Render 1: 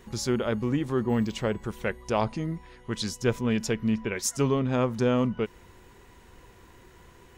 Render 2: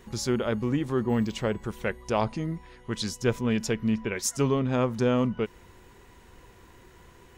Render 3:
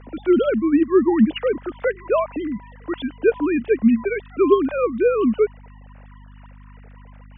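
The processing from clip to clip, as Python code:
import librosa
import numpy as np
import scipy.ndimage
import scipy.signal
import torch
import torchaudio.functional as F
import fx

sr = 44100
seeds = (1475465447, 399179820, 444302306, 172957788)

y1 = x
y2 = fx.sine_speech(y1, sr)
y2 = fx.add_hum(y2, sr, base_hz=50, snr_db=23)
y2 = F.gain(torch.from_numpy(y2), 8.0).numpy()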